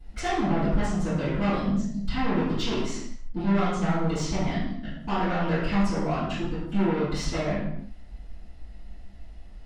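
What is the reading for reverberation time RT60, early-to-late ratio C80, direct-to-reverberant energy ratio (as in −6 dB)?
non-exponential decay, 3.5 dB, −17.0 dB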